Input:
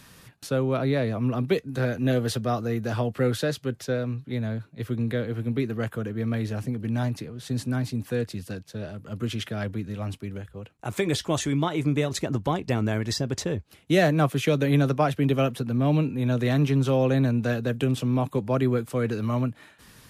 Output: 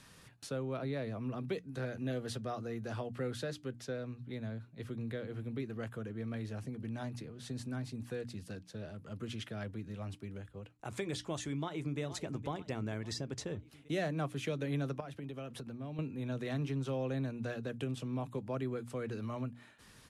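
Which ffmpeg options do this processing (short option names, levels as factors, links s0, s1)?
-filter_complex "[0:a]asplit=2[s0][s1];[s1]afade=t=in:st=11.58:d=0.01,afade=t=out:st=12:d=0.01,aecho=0:1:470|940|1410|1880|2350|2820:0.237137|0.130426|0.0717341|0.0394537|0.0216996|0.0119348[s2];[s0][s2]amix=inputs=2:normalize=0,asettb=1/sr,asplit=3[s3][s4][s5];[s3]atrim=end=15.004[s6];[s4]atrim=start=15:end=15.99,asetpts=PTS-STARTPTS,afade=t=in:d=0.004:c=qsin,afade=t=out:st=0.986:d=0.004:c=qsin,acompressor=threshold=0.0316:ratio=6:attack=3.2:release=140:knee=1:detection=peak[s7];[s5]atrim=start=15.986[s8];[s6][s7]acrossfade=d=0.004:c1=hsin:c2=qsin[s9];[s9][s8]acrossfade=d=0.004:c1=qsin:c2=hsin,bandreject=f=60:t=h:w=6,bandreject=f=120:t=h:w=6,bandreject=f=180:t=h:w=6,bandreject=f=240:t=h:w=6,bandreject=f=300:t=h:w=6,acompressor=threshold=0.0126:ratio=1.5,lowpass=f=11000:w=0.5412,lowpass=f=11000:w=1.3066,volume=0.447"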